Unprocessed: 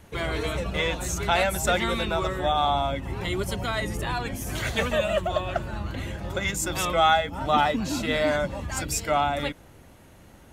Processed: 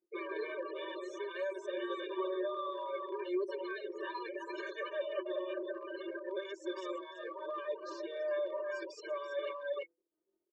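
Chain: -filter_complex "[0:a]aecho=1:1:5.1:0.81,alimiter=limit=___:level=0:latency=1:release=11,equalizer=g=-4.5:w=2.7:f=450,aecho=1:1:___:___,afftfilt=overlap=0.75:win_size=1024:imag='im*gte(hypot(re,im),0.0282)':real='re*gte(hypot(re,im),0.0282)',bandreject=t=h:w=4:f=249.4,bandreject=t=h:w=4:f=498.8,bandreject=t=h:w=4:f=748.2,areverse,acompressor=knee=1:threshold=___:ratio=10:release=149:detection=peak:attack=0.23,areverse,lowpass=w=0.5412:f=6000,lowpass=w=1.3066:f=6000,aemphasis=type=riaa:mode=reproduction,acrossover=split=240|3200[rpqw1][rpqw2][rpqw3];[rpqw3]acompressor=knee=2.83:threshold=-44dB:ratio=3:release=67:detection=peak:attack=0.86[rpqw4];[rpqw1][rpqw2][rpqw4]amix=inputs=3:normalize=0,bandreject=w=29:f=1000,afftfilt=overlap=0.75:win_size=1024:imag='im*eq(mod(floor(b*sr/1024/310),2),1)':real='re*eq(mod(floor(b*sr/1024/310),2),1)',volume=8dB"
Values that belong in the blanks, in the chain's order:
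-16dB, 334, 0.335, -38dB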